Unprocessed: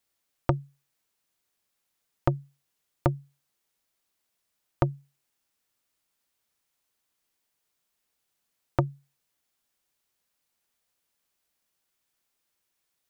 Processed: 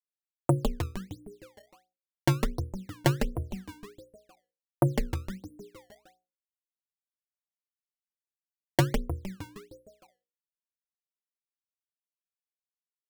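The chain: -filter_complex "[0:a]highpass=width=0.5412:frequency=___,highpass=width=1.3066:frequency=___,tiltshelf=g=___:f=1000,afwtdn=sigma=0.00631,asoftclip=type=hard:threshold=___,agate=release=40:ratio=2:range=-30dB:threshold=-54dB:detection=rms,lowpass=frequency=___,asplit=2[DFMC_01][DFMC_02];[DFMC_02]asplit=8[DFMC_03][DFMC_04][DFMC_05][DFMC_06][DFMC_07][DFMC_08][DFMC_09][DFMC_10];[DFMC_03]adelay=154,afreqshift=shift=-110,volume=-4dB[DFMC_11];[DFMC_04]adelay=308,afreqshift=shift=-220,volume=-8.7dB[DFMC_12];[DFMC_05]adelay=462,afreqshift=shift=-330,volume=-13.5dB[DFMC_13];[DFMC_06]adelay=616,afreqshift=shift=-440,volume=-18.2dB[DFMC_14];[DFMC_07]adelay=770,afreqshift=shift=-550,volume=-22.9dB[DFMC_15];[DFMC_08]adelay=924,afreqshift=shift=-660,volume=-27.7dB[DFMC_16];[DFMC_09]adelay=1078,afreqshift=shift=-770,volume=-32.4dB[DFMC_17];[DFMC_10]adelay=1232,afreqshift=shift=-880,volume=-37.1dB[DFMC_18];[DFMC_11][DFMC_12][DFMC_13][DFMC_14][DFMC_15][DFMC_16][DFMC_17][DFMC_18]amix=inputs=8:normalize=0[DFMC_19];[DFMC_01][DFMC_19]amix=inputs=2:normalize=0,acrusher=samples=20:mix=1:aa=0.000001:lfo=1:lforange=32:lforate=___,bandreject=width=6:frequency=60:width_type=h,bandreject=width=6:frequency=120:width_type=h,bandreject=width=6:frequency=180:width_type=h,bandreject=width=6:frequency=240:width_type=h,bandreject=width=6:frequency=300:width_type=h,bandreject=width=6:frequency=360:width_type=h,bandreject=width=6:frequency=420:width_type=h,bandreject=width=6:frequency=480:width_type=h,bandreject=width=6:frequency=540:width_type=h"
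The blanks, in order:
130, 130, 4.5, -10dB, 1400, 1.4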